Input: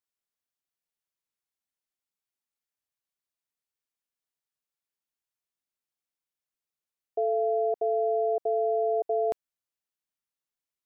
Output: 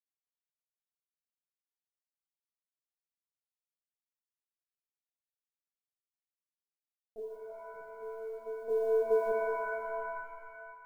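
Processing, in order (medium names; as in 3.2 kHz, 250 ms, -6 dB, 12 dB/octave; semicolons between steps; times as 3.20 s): distance through air 140 m; feedback comb 150 Hz, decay 0.19 s, harmonics all, mix 90%; reverb removal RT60 0.66 s; low-pass that closes with the level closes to 410 Hz, closed at -38 dBFS; 7.36–8.02 s: compressor with a negative ratio -49 dBFS, ratio -0.5; 8.69–9.31 s: high-order bell 600 Hz +15.5 dB 1.2 oct; LPC vocoder at 8 kHz pitch kept; feedback comb 310 Hz, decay 0.22 s, harmonics all, mix 40%; companded quantiser 8-bit; pitch-shifted reverb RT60 2.3 s, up +7 st, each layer -2 dB, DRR 1.5 dB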